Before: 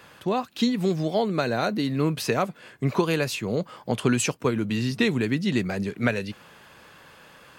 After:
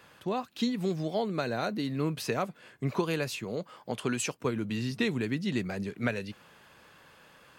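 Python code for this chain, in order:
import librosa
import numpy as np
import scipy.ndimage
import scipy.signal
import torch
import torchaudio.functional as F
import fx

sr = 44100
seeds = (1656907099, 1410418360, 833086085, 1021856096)

y = fx.low_shelf(x, sr, hz=210.0, db=-7.0, at=(3.44, 4.38))
y = F.gain(torch.from_numpy(y), -6.5).numpy()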